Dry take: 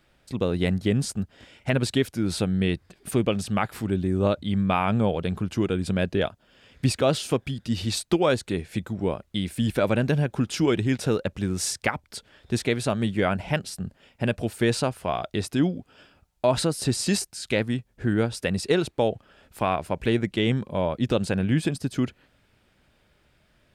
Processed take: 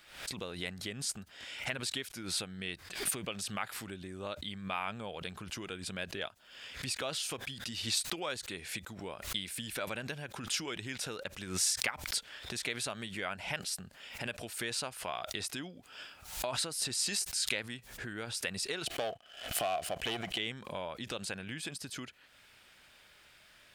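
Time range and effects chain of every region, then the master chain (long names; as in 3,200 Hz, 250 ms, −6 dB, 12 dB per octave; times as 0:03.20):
0:18.86–0:20.38: parametric band 920 Hz −14.5 dB 0.27 octaves + leveller curve on the samples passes 2 + hollow resonant body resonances 700/3,000 Hz, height 14 dB, ringing for 25 ms
whole clip: downward compressor 3 to 1, threshold −40 dBFS; tilt shelving filter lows −9.5 dB, about 690 Hz; background raised ahead of every attack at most 92 dB per second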